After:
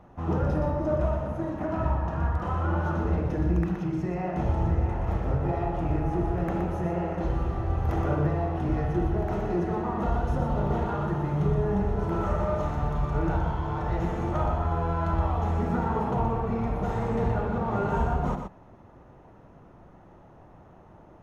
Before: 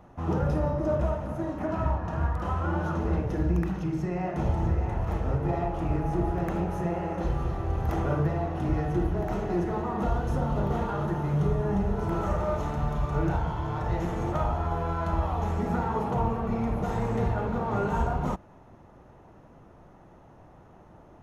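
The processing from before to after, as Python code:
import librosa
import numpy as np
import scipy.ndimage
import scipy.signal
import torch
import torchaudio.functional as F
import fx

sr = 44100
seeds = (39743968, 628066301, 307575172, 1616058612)

y = fx.high_shelf(x, sr, hz=5200.0, db=-7.5)
y = y + 10.0 ** (-6.5 / 20.0) * np.pad(y, (int(121 * sr / 1000.0), 0))[:len(y)]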